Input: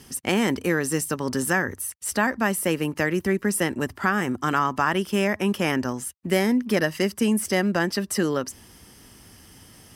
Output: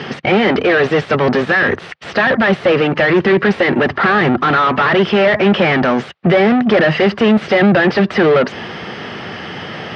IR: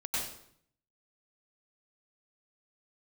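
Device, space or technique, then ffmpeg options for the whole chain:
overdrive pedal into a guitar cabinet: -filter_complex "[0:a]asplit=2[s0][s1];[s1]highpass=f=720:p=1,volume=63.1,asoftclip=type=tanh:threshold=0.447[s2];[s0][s2]amix=inputs=2:normalize=0,lowpass=f=1100:p=1,volume=0.501,highpass=110,equalizer=f=150:t=q:w=4:g=4,equalizer=f=280:t=q:w=4:g=-9,equalizer=f=980:t=q:w=4:g=-6,lowpass=f=3900:w=0.5412,lowpass=f=3900:w=1.3066,volume=2"

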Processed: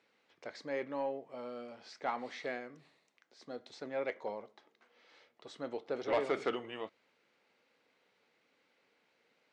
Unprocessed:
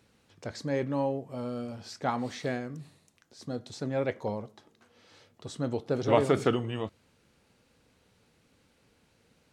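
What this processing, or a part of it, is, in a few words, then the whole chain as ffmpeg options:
intercom: -af "highpass=400,lowpass=4300,equalizer=f=2100:t=o:w=0.27:g=6,asoftclip=type=tanh:threshold=0.126,volume=0.596"

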